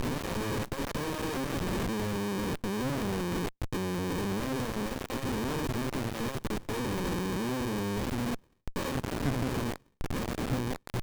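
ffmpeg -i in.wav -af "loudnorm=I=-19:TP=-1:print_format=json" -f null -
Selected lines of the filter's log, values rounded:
"input_i" : "-33.4",
"input_tp" : "-19.8",
"input_lra" : "1.4",
"input_thresh" : "-43.4",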